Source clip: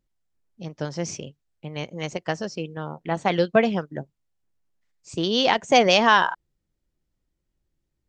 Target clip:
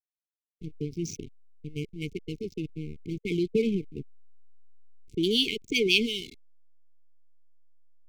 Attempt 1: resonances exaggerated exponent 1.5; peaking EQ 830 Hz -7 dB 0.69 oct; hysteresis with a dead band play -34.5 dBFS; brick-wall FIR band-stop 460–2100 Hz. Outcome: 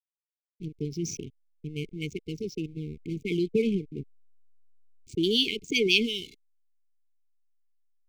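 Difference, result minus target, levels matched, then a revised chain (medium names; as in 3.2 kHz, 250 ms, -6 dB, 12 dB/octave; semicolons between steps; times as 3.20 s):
hysteresis with a dead band: distortion -6 dB
resonances exaggerated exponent 1.5; peaking EQ 830 Hz -7 dB 0.69 oct; hysteresis with a dead band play -28.5 dBFS; brick-wall FIR band-stop 460–2100 Hz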